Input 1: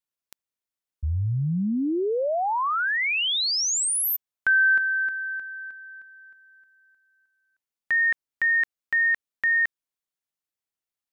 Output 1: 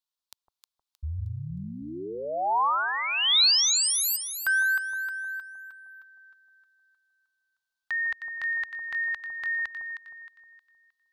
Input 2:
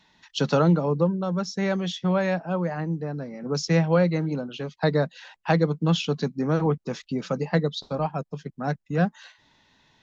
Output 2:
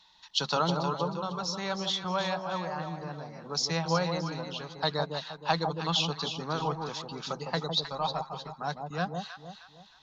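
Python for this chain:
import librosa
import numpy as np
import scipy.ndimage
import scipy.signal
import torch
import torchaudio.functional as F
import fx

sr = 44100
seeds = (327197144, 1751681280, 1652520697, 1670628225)

y = fx.graphic_eq(x, sr, hz=(125, 250, 500, 1000, 2000, 4000), db=(-7, -11, -7, 7, -7, 10))
y = fx.echo_alternate(y, sr, ms=156, hz=960.0, feedback_pct=59, wet_db=-4)
y = F.gain(torch.from_numpy(y), -3.0).numpy()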